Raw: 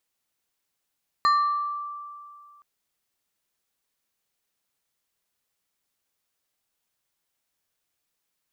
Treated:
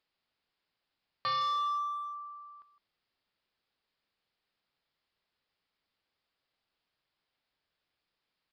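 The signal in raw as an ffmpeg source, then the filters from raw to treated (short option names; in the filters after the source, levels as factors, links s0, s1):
-f lavfi -i "aevalsrc='0.168*pow(10,-3*t/2.26)*sin(2*PI*1170*t+0.51*pow(10,-3*t/0.99)*sin(2*PI*2.55*1170*t))':d=1.37:s=44100"
-filter_complex "[0:a]aresample=11025,asoftclip=type=hard:threshold=0.0316,aresample=44100,asplit=2[s0][s1];[s1]adelay=160,highpass=300,lowpass=3400,asoftclip=type=hard:threshold=0.0168,volume=0.224[s2];[s0][s2]amix=inputs=2:normalize=0"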